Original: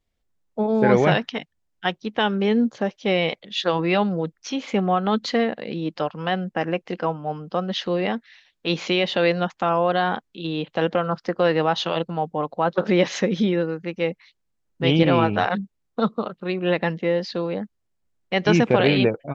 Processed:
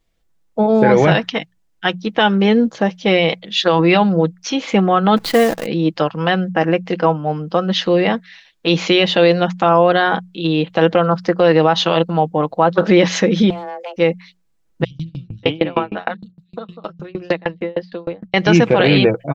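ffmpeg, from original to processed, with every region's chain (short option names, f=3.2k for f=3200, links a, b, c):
-filter_complex "[0:a]asettb=1/sr,asplit=3[a][b][c];[a]atrim=end=5.164[d];[b]atrim=start=5.16:end=5.66,asetpts=PTS-STARTPTS,afade=t=in:d=0.004:c=qsin,afade=t=out:st=0.496:d=0.004:c=qsin,lowpass=4.6k,acrusher=bits=6:dc=4:mix=0:aa=0.000001,adynamicequalizer=threshold=0.0112:dfrequency=1600:dqfactor=0.7:tfrequency=1600:tqfactor=0.7:attack=5:release=100:ratio=0.375:range=2.5:mode=cutabove:tftype=highshelf[e];[c]atrim=start=5.656[f];[d][e]acrossfade=d=0.004:c1=hsin:c2=qsin[g];[g][f]acrossfade=d=0.004:c1=qsin:c2=hsin,asettb=1/sr,asplit=3[h][i][j];[h]atrim=end=13.504[k];[i]atrim=start=13.5:end=13.96,asetpts=PTS-STARTPTS,afade=t=in:d=0.004:c=qsin,afade=t=out:st=0.456:d=0.004:c=qsin,aeval=exprs='clip(val(0),-1,0.0398)':c=same,acompressor=threshold=-33dB:ratio=16:attack=3.2:release=140:knee=1:detection=peak,afreqshift=340[l];[j]atrim=start=13.956[m];[k][l]acrossfade=d=0.004:c1=hsin:c2=qsin[n];[n][m]acrossfade=d=0.004:c1=qsin:c2=hsin,asettb=1/sr,asplit=3[o][p][q];[o]atrim=end=14.844[r];[p]atrim=start=14.84:end=18.34,asetpts=PTS-STARTPTS,afade=t=in:d=0.004:c=qsin,afade=t=out:st=3.496:d=0.004:c=qsin,acrossover=split=150|5100[s][t][u];[s]adelay=60[v];[t]adelay=590[w];[v][w][u]amix=inputs=3:normalize=0,atrim=end_sample=154350,aeval=exprs='val(0)*pow(10,-33*if(lt(mod(6.5*n/s,1),2*abs(6.5)/1000),1-mod(6.5*n/s,1)/(2*abs(6.5)/1000),(mod(6.5*n/s,1)-2*abs(6.5)/1000)/(1-2*abs(6.5)/1000))/20)':c=same[x];[q]atrim=start=18.336[y];[r][x]acrossfade=d=0.004:c1=hsin:c2=qsin[z];[z][y]acrossfade=d=0.004:c1=qsin:c2=hsin,bandreject=f=60:t=h:w=6,bandreject=f=120:t=h:w=6,bandreject=f=180:t=h:w=6,aecho=1:1:6.1:0.36,alimiter=level_in=9dB:limit=-1dB:release=50:level=0:latency=1,volume=-1dB"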